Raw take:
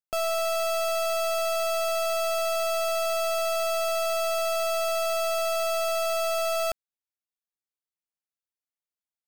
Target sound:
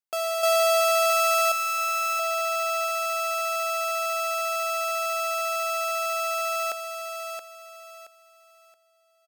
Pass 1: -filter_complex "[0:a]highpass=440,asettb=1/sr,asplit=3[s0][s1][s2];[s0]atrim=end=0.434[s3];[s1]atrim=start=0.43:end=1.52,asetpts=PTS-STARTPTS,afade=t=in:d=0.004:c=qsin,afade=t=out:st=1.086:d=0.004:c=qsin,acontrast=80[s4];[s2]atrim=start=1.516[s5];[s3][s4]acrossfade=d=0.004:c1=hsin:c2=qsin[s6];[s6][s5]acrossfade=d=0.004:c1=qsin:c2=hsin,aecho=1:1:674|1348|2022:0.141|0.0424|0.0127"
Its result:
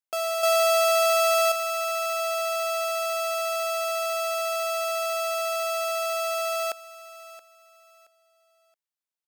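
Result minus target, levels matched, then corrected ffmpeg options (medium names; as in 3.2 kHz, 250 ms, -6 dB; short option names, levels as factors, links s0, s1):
echo-to-direct -10 dB
-filter_complex "[0:a]highpass=440,asettb=1/sr,asplit=3[s0][s1][s2];[s0]atrim=end=0.434[s3];[s1]atrim=start=0.43:end=1.52,asetpts=PTS-STARTPTS,afade=t=in:d=0.004:c=qsin,afade=t=out:st=1.086:d=0.004:c=qsin,acontrast=80[s4];[s2]atrim=start=1.516[s5];[s3][s4]acrossfade=d=0.004:c1=hsin:c2=qsin[s6];[s6][s5]acrossfade=d=0.004:c1=qsin:c2=hsin,aecho=1:1:674|1348|2022|2696:0.447|0.134|0.0402|0.0121"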